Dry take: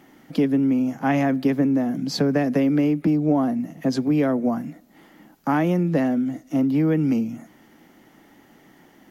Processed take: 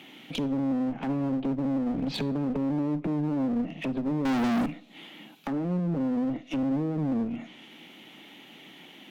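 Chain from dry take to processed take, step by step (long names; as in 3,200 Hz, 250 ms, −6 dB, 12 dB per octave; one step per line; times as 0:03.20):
high-pass filter 130 Hz 24 dB per octave
treble cut that deepens with the level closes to 300 Hz, closed at −17.5 dBFS
flat-topped bell 3,000 Hz +15.5 dB 1 octave
brickwall limiter −19 dBFS, peak gain reduction 9 dB
0:04.25–0:04.66: leveller curve on the samples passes 5
asymmetric clip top −31 dBFS, bottom −21 dBFS
four-comb reverb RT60 0.45 s, combs from 30 ms, DRR 18.5 dB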